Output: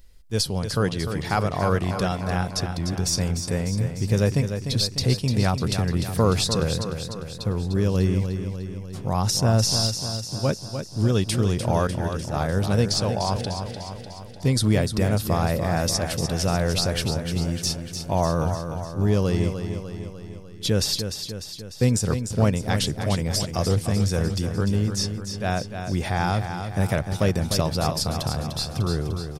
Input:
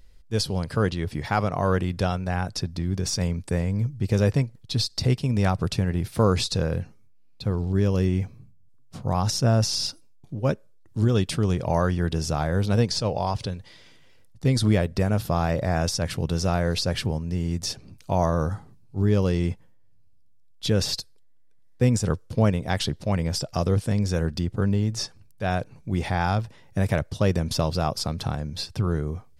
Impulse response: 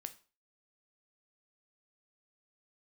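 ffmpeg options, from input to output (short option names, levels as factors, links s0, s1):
-filter_complex "[0:a]asettb=1/sr,asplit=3[s0][s1][s2];[s0]atrim=end=11.874[s3];[s1]atrim=start=11.87:end=12.34,asetpts=PTS-STARTPTS,afade=t=in:d=0.004:c=qsin,afade=t=out:st=0.466:d=0.004:c=qsin,agate=range=0.0224:threshold=0.126:ratio=3:detection=peak[s4];[s2]atrim=start=12.336[s5];[s3][s4]acrossfade=d=0.004:c1=hsin:c2=qsin[s6];[s6][s5]acrossfade=d=0.004:c1=qsin:c2=hsin,crystalizer=i=1:c=0,aecho=1:1:299|598|897|1196|1495|1794|2093:0.398|0.235|0.139|0.0818|0.0482|0.0285|0.0168"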